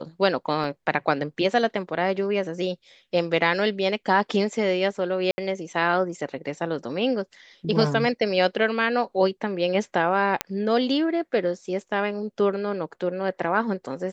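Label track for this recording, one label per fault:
0.640000	0.640000	drop-out 3.6 ms
5.310000	5.380000	drop-out 70 ms
10.410000	10.410000	click −6 dBFS

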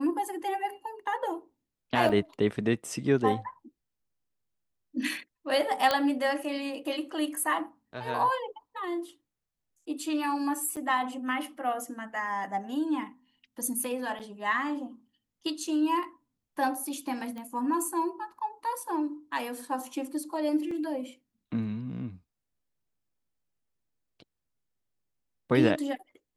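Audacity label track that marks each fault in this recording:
2.090000	2.100000	drop-out 5.8 ms
5.910000	5.910000	click −11 dBFS
10.760000	10.770000	drop-out 7.7 ms
14.190000	14.200000	drop-out 7.8 ms
17.380000	17.380000	click −28 dBFS
20.710000	20.710000	drop-out 3.4 ms

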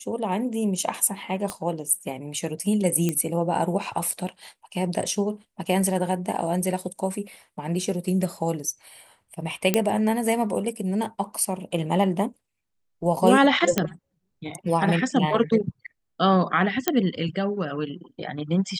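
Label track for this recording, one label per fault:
1.500000	1.500000	click −15 dBFS
3.090000	3.090000	click −11 dBFS
9.740000	9.740000	click −4 dBFS
13.780000	13.780000	click −5 dBFS
16.880000	16.880000	click −4 dBFS

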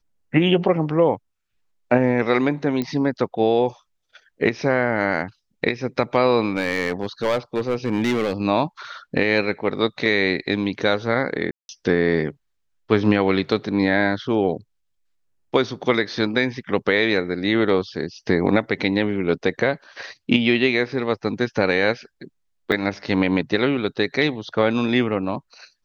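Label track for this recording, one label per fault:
2.820000	2.820000	click −13 dBFS
6.510000	8.330000	clipping −16 dBFS
11.510000	11.690000	drop-out 181 ms
22.720000	22.720000	drop-out 4.8 ms

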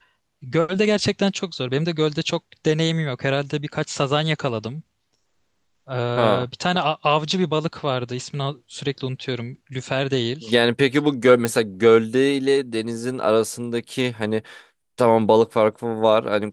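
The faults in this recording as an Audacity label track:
11.450000	11.450000	click −7 dBFS

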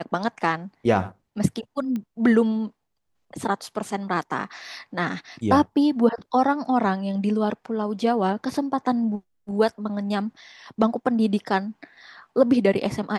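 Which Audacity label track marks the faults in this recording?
1.960000	1.960000	click −19 dBFS

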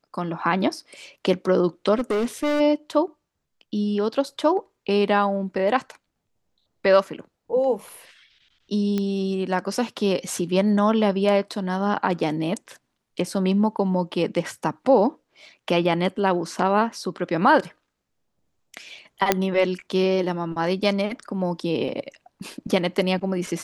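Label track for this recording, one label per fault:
1.950000	2.610000	clipping −19.5 dBFS
8.980000	8.980000	click −13 dBFS
19.320000	19.320000	click −2 dBFS

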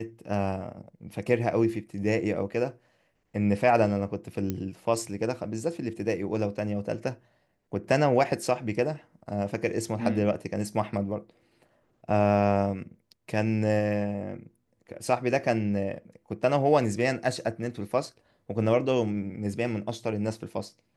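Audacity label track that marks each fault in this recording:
4.500000	4.500000	click −16 dBFS

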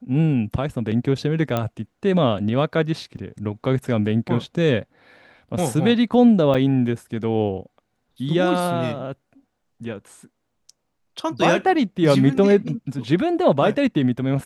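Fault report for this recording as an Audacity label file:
1.570000	1.570000	click −10 dBFS
3.170000	3.170000	drop-out 4.3 ms
6.540000	6.550000	drop-out 6 ms

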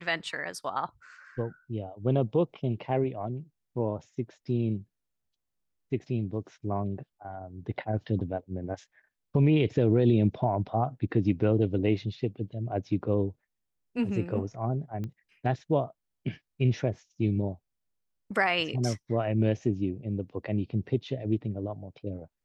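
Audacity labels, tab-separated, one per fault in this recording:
15.040000	15.040000	click −25 dBFS

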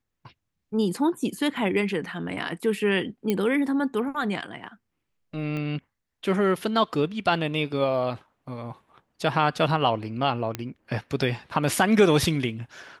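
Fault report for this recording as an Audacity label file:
3.300000	3.300000	click −12 dBFS
5.570000	5.570000	click −21 dBFS
10.550000	10.550000	click −13 dBFS

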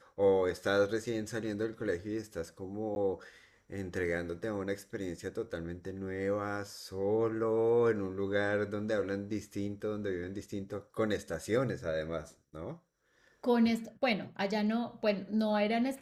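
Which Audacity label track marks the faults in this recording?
2.950000	2.960000	drop-out

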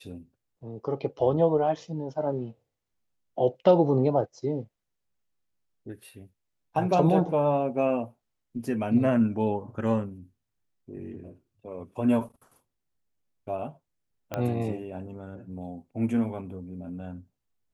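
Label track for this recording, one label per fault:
14.340000	14.340000	click −16 dBFS

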